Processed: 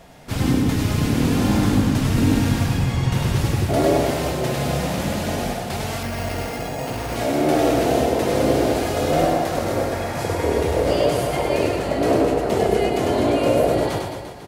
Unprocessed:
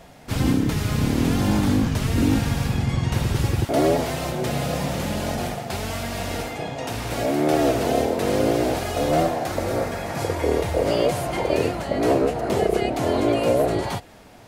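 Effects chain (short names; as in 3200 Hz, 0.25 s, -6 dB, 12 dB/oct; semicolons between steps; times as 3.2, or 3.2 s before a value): on a send: reverse bouncing-ball echo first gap 0.1 s, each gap 1.15×, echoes 5; 6.03–7.16 on the sum: careless resampling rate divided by 6×, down filtered, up hold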